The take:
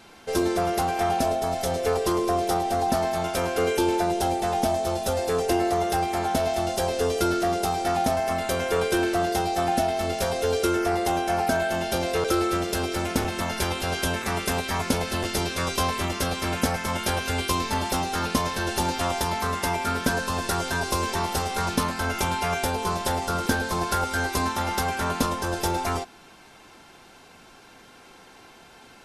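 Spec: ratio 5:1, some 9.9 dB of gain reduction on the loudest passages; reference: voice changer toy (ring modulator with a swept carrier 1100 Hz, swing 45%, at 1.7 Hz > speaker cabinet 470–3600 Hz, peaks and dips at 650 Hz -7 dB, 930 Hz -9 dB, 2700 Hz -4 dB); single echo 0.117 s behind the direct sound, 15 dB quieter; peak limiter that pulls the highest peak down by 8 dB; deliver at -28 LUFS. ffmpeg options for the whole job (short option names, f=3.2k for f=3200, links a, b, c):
-af "acompressor=threshold=-31dB:ratio=5,alimiter=level_in=1dB:limit=-24dB:level=0:latency=1,volume=-1dB,aecho=1:1:117:0.178,aeval=exprs='val(0)*sin(2*PI*1100*n/s+1100*0.45/1.7*sin(2*PI*1.7*n/s))':c=same,highpass=470,equalizer=f=650:t=q:w=4:g=-7,equalizer=f=930:t=q:w=4:g=-9,equalizer=f=2.7k:t=q:w=4:g=-4,lowpass=f=3.6k:w=0.5412,lowpass=f=3.6k:w=1.3066,volume=11.5dB"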